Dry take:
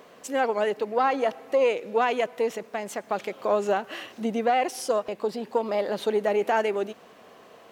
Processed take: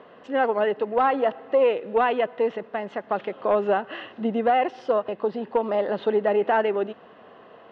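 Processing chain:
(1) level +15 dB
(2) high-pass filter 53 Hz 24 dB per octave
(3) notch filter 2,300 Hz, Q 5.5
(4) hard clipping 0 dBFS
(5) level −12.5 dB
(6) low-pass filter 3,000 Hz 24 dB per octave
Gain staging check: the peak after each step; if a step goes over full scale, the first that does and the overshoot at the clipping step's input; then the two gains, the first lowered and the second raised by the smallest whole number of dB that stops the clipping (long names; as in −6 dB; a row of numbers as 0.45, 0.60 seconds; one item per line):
+2.0, +3.0, +3.0, 0.0, −12.5, −11.5 dBFS
step 1, 3.0 dB
step 1 +12 dB, step 5 −9.5 dB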